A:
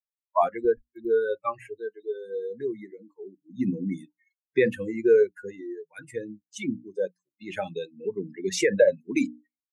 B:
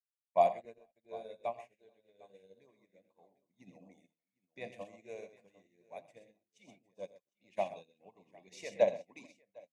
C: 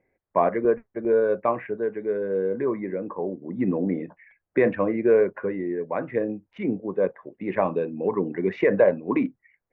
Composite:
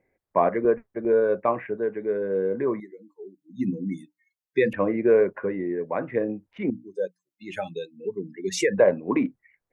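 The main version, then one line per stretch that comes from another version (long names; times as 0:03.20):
C
0:02.80–0:04.73: punch in from A
0:06.70–0:08.78: punch in from A
not used: B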